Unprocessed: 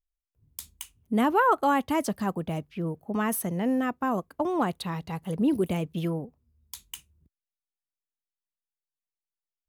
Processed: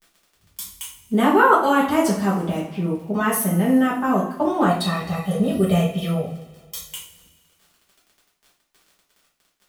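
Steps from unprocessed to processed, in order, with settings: crackle 31/s -43 dBFS; 4.66–6.83 comb 1.6 ms, depth 94%; two-slope reverb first 0.41 s, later 1.8 s, from -18 dB, DRR -7 dB

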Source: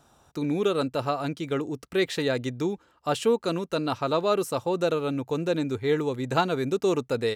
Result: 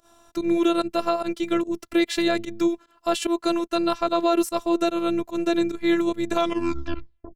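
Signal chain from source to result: tape stop at the end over 1.05 s; pump 147 bpm, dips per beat 1, -21 dB, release 91 ms; robotiser 340 Hz; maximiser +14.5 dB; gain -7.5 dB

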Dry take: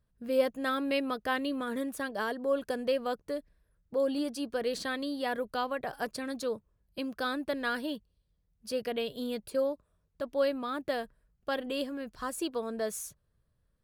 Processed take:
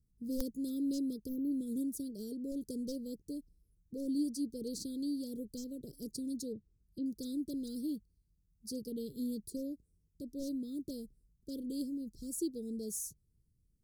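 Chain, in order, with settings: one-sided fold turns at -23.5 dBFS; 1.28–1.52 spectral gain 840–11000 Hz -24 dB; 6.52–7.06 treble ducked by the level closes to 2500 Hz, closed at -37.5 dBFS; inverse Chebyshev band-stop 750–2600 Hz, stop band 50 dB; wrapped overs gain 24 dB

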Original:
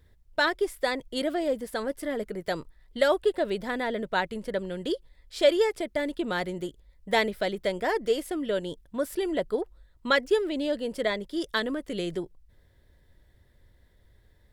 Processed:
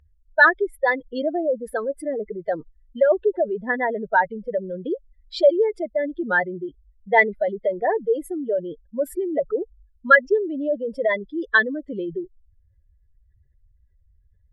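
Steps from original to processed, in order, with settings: spectral contrast raised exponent 2.6; bell 1800 Hz +12 dB 2.8 oct; gain +1 dB

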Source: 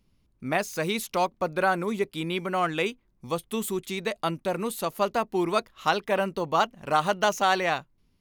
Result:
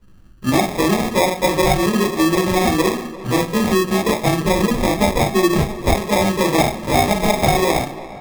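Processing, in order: reverb RT60 0.35 s, pre-delay 15 ms, DRR -8.5 dB; sample-and-hold 30×; 4.45–5.94 low shelf 110 Hz +10.5 dB; compressor 4:1, threshold -17 dBFS, peak gain reduction 11 dB; tape echo 0.342 s, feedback 80%, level -17 dB, low-pass 3100 Hz; gain +3.5 dB

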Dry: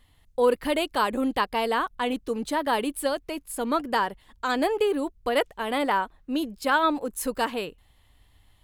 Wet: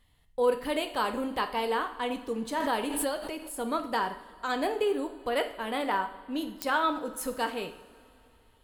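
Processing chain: two-slope reverb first 0.58 s, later 3.2 s, from -18 dB, DRR 6 dB; pops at 6.62, -7 dBFS; 2.6–3.54 backwards sustainer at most 35 dB/s; gain -5.5 dB

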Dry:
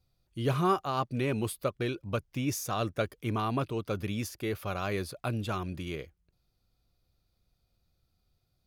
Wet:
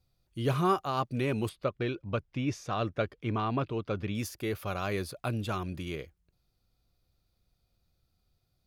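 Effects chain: 1.49–4.15 LPF 3800 Hz 12 dB/oct

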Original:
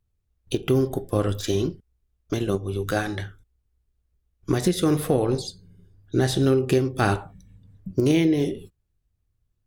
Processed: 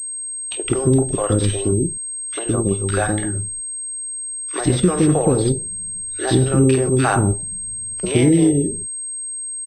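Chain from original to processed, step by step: three bands offset in time highs, mids, lows 50/170 ms, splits 460/1800 Hz; 6.75–7.15 transient shaper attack -11 dB, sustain +4 dB; pulse-width modulation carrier 8400 Hz; gain +7 dB

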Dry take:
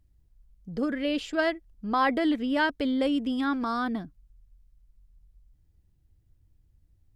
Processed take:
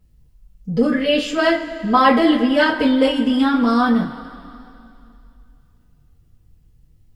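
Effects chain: two-slope reverb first 0.23 s, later 2.7 s, from -21 dB, DRR -6.5 dB; gain +4 dB

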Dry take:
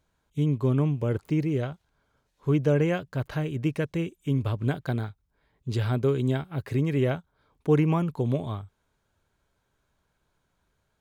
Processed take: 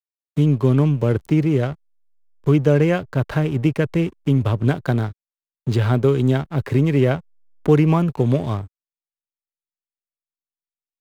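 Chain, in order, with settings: backlash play -41 dBFS; three-band squash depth 40%; gain +8 dB

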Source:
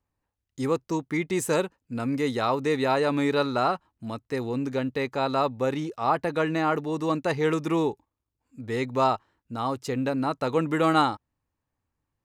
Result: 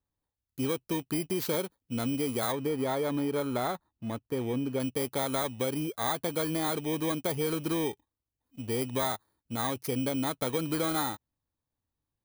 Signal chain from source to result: FFT order left unsorted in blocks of 16 samples; 2.52–4.8 high shelf 2800 Hz -11 dB; sample leveller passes 1; compressor, threshold -23 dBFS, peak gain reduction 8 dB; gain -4 dB

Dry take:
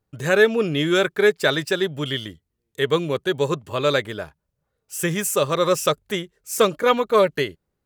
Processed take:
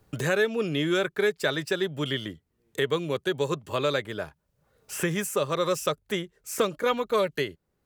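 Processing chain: three-band squash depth 70%; gain -6.5 dB

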